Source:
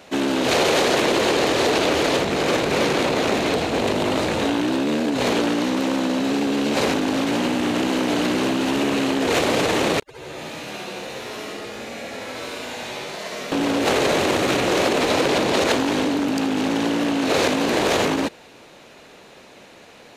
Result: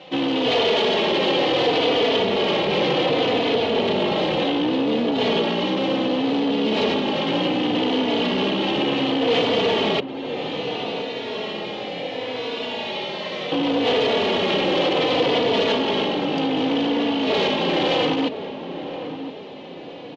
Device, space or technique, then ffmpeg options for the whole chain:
barber-pole flanger into a guitar amplifier: -filter_complex "[0:a]asplit=2[a][b];[b]adelay=3.4,afreqshift=-0.67[c];[a][c]amix=inputs=2:normalize=1,asoftclip=type=tanh:threshold=-22dB,highpass=80,equalizer=f=81:t=q:w=4:g=-9,equalizer=f=180:t=q:w=4:g=4,equalizer=f=480:t=q:w=4:g=6,equalizer=f=820:t=q:w=4:g=4,equalizer=f=1.5k:t=q:w=4:g=-6,equalizer=f=3.1k:t=q:w=4:g=10,lowpass=f=4.5k:w=0.5412,lowpass=f=4.5k:w=1.3066,asplit=2[d][e];[e]adelay=1018,lowpass=f=1k:p=1,volume=-9.5dB,asplit=2[f][g];[g]adelay=1018,lowpass=f=1k:p=1,volume=0.49,asplit=2[h][i];[i]adelay=1018,lowpass=f=1k:p=1,volume=0.49,asplit=2[j][k];[k]adelay=1018,lowpass=f=1k:p=1,volume=0.49,asplit=2[l][m];[m]adelay=1018,lowpass=f=1k:p=1,volume=0.49[n];[d][f][h][j][l][n]amix=inputs=6:normalize=0,volume=3.5dB"

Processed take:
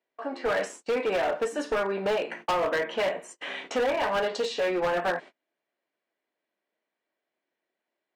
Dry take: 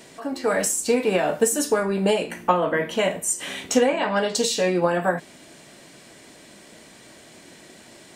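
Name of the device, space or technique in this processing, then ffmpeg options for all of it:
walkie-talkie: -af "highpass=420,lowpass=2.5k,asoftclip=type=hard:threshold=-22.5dB,agate=range=-34dB:threshold=-42dB:ratio=16:detection=peak"

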